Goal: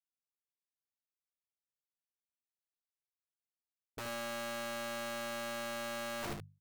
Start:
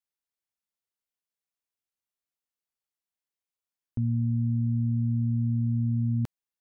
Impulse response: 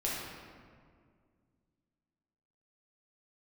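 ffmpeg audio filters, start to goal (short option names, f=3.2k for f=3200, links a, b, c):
-af "agate=range=-33dB:threshold=-21dB:ratio=3:detection=peak,equalizer=f=210:w=2.4:g=3,bandreject=f=50:t=h:w=6,bandreject=f=100:t=h:w=6,bandreject=f=150:t=h:w=6,bandreject=f=200:t=h:w=6,areverse,acompressor=threshold=-49dB:ratio=6,areverse,aeval=exprs='(mod(398*val(0)+1,2)-1)/398':c=same,aecho=1:1:14|72:0.447|0.501,volume=16dB"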